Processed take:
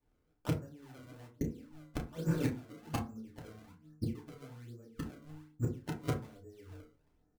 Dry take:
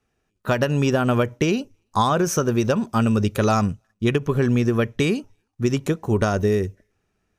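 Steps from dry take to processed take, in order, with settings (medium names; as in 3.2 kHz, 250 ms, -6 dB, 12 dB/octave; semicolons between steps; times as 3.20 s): low-pass 1.1 kHz 12 dB/octave; de-hum 153.4 Hz, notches 3; 2.02–2.49 s: compressor with a negative ratio -27 dBFS, ratio -0.5; chorus voices 4, 0.83 Hz, delay 25 ms, depth 2.4 ms; inverted gate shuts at -19 dBFS, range -30 dB; rotary cabinet horn 6 Hz, later 0.75 Hz, at 3.80 s; decimation with a swept rate 29×, swing 160% 1.2 Hz; doubling 31 ms -8 dB; FDN reverb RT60 0.31 s, low-frequency decay 1.35×, high-frequency decay 0.45×, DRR 0 dB; trim -1.5 dB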